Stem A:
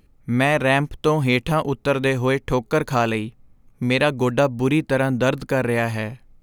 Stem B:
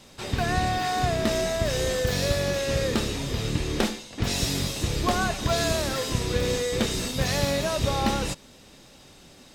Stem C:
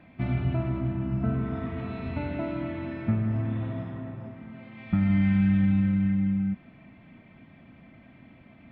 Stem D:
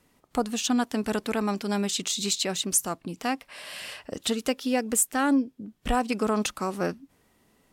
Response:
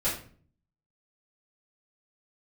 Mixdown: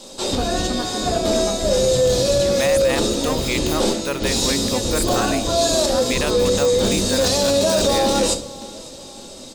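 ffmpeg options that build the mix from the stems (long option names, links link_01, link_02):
-filter_complex "[0:a]aemphasis=mode=production:type=bsi,adelay=2200,volume=-5dB[link_01];[1:a]equalizer=frequency=125:width_type=o:width=1:gain=-9,equalizer=frequency=250:width_type=o:width=1:gain=6,equalizer=frequency=500:width_type=o:width=1:gain=9,equalizer=frequency=1000:width_type=o:width=1:gain=4,equalizer=frequency=2000:width_type=o:width=1:gain=-8,equalizer=frequency=4000:width_type=o:width=1:gain=8,equalizer=frequency=8000:width_type=o:width=1:gain=11,volume=2dB,asplit=3[link_02][link_03][link_04];[link_03]volume=-11.5dB[link_05];[link_04]volume=-21dB[link_06];[2:a]alimiter=limit=-20.5dB:level=0:latency=1,flanger=delay=18:depth=6:speed=0.77,adelay=1500,volume=2dB[link_07];[3:a]volume=-4dB,asplit=2[link_08][link_09];[link_09]apad=whole_len=421070[link_10];[link_02][link_10]sidechaincompress=threshold=-48dB:ratio=8:attack=16:release=225[link_11];[4:a]atrim=start_sample=2205[link_12];[link_05][link_12]afir=irnorm=-1:irlink=0[link_13];[link_06]aecho=0:1:556|1112|1668|2224|2780|3336|3892:1|0.48|0.23|0.111|0.0531|0.0255|0.0122[link_14];[link_01][link_11][link_07][link_08][link_13][link_14]amix=inputs=6:normalize=0,alimiter=limit=-9dB:level=0:latency=1:release=13"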